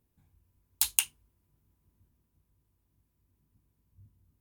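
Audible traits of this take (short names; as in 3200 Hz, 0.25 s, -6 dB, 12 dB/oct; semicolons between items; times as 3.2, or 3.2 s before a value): noise floor -77 dBFS; spectral tilt +2.5 dB/oct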